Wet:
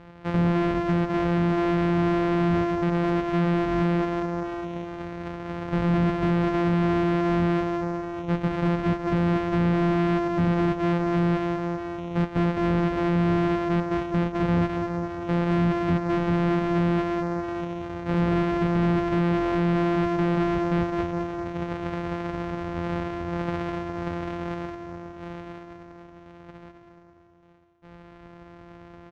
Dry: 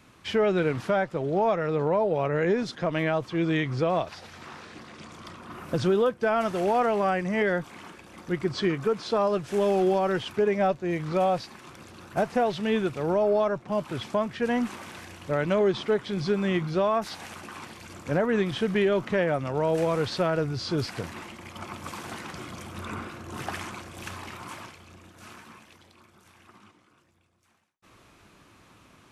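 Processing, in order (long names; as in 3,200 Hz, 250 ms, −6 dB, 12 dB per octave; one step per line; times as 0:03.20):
samples sorted by size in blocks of 256 samples
repeating echo 206 ms, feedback 56%, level −10 dB
in parallel at −2.5 dB: downward compressor, threshold −36 dBFS, peak gain reduction 16 dB
on the sum: harmonic generator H 5 −10 dB, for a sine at −11.5 dBFS
low-pass filter 2,200 Hz 12 dB per octave
level −3.5 dB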